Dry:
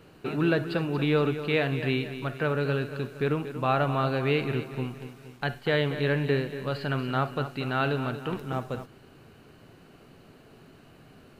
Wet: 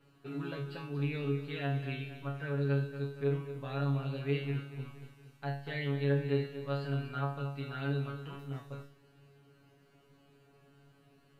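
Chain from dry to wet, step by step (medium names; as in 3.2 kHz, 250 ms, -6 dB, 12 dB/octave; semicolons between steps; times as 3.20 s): feedback comb 140 Hz, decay 0.4 s, harmonics all, mix 100%; trim +1 dB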